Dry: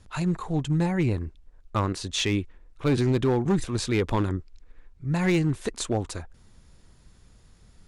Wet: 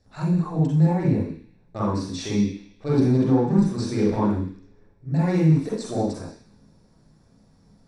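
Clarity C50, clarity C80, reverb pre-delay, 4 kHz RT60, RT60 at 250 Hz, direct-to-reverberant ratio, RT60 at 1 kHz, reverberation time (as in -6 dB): -1.0 dB, 5.0 dB, 38 ms, 0.85 s, 0.50 s, -7.0 dB, 0.50 s, 0.50 s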